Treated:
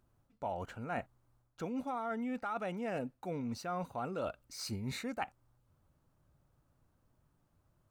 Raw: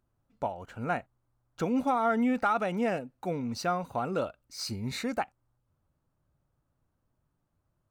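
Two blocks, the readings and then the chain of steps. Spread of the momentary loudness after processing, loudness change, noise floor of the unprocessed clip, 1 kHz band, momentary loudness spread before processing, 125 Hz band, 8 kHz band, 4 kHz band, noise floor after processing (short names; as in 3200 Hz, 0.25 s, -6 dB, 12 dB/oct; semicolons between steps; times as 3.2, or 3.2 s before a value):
4 LU, -8.5 dB, -78 dBFS, -9.0 dB, 10 LU, -5.5 dB, -5.5 dB, -7.0 dB, -75 dBFS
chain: reverse; compressor 10:1, threshold -39 dBFS, peak gain reduction 17 dB; reverse; dynamic EQ 4800 Hz, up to -4 dB, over -59 dBFS, Q 1.9; gain +4 dB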